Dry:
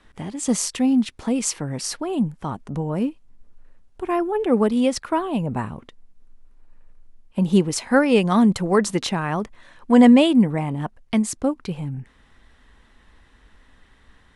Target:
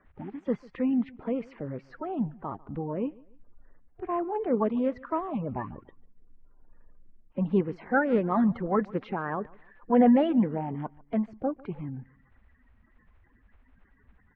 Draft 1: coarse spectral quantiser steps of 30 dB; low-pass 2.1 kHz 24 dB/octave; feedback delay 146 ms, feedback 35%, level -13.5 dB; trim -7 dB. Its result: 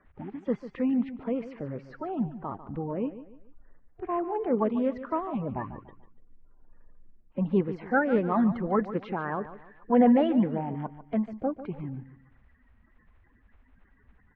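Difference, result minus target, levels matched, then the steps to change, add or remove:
echo-to-direct +10 dB
change: feedback delay 146 ms, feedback 35%, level -23.5 dB

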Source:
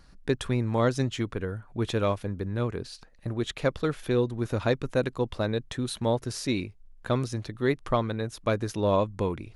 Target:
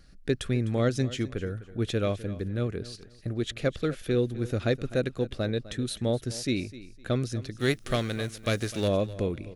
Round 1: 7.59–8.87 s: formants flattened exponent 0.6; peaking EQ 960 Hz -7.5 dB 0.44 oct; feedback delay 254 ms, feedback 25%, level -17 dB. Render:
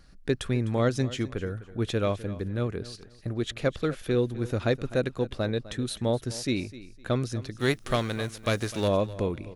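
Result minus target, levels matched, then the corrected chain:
1 kHz band +3.5 dB
7.59–8.87 s: formants flattened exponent 0.6; peaking EQ 960 Hz -17.5 dB 0.44 oct; feedback delay 254 ms, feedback 25%, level -17 dB

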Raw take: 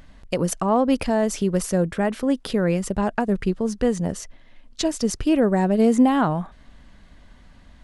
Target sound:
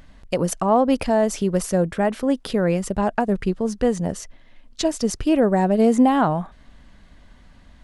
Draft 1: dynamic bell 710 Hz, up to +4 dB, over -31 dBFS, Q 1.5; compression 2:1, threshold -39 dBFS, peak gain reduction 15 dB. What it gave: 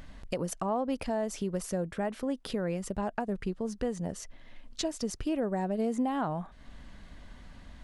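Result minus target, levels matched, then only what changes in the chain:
compression: peak gain reduction +15 dB
remove: compression 2:1, threshold -39 dBFS, peak gain reduction 15 dB

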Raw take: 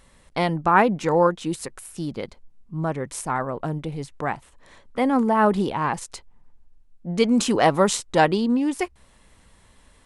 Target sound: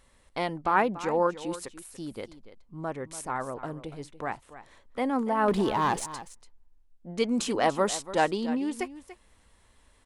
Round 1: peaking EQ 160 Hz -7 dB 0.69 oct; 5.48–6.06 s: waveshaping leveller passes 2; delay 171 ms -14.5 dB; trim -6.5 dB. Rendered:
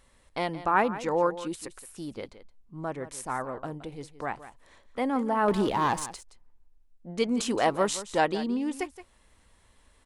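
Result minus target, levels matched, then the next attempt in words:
echo 117 ms early
peaking EQ 160 Hz -7 dB 0.69 oct; 5.48–6.06 s: waveshaping leveller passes 2; delay 288 ms -14.5 dB; trim -6.5 dB

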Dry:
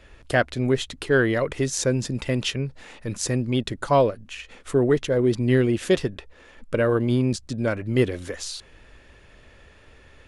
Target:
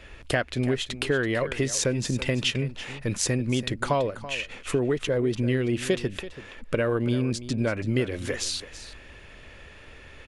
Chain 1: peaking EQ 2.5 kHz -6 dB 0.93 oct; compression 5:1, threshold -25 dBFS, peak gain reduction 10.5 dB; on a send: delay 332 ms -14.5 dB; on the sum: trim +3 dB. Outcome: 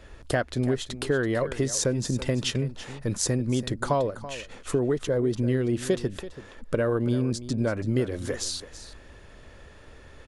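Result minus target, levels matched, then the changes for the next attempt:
2 kHz band -4.0 dB
change: peaking EQ 2.5 kHz +4.5 dB 0.93 oct

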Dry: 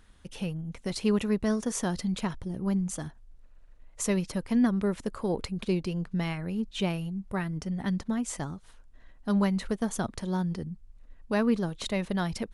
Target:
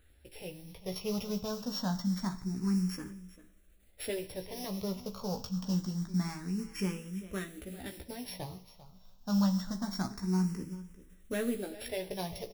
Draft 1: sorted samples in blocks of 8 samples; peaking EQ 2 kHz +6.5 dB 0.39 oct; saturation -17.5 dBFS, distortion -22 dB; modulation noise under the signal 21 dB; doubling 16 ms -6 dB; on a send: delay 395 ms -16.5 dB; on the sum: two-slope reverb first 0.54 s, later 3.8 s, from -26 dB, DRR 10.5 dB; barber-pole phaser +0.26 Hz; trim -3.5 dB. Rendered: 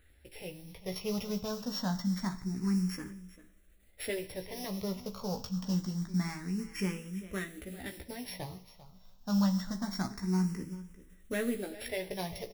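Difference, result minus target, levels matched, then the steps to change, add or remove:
2 kHz band +3.5 dB
remove: peaking EQ 2 kHz +6.5 dB 0.39 oct

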